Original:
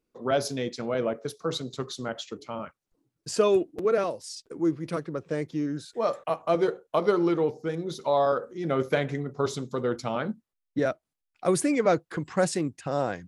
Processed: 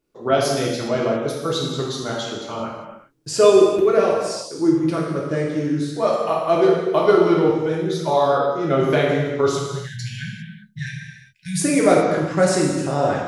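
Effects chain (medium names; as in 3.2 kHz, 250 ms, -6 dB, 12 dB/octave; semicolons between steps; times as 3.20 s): 9.49–11.60 s: brick-wall FIR band-stop 200–1500 Hz; gated-style reverb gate 430 ms falling, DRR -3.5 dB; trim +3.5 dB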